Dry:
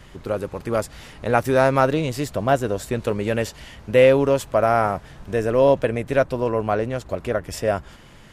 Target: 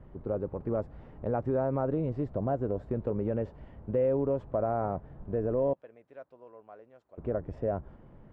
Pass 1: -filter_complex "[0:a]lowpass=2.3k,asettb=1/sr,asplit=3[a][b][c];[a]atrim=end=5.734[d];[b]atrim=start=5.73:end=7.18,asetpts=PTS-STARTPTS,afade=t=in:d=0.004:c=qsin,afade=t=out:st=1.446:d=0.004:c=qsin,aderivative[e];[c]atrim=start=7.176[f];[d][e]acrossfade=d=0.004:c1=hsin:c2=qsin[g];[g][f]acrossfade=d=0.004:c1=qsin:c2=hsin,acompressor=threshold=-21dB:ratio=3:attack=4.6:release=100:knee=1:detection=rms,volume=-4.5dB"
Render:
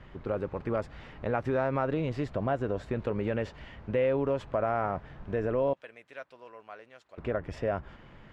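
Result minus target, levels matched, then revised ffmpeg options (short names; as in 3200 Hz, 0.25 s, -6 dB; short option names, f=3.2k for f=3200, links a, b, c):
2000 Hz band +12.0 dB
-filter_complex "[0:a]lowpass=710,asettb=1/sr,asplit=3[a][b][c];[a]atrim=end=5.734[d];[b]atrim=start=5.73:end=7.18,asetpts=PTS-STARTPTS,afade=t=in:d=0.004:c=qsin,afade=t=out:st=1.446:d=0.004:c=qsin,aderivative[e];[c]atrim=start=7.176[f];[d][e]acrossfade=d=0.004:c1=hsin:c2=qsin[g];[g][f]acrossfade=d=0.004:c1=qsin:c2=hsin,acompressor=threshold=-21dB:ratio=3:attack=4.6:release=100:knee=1:detection=rms,volume=-4.5dB"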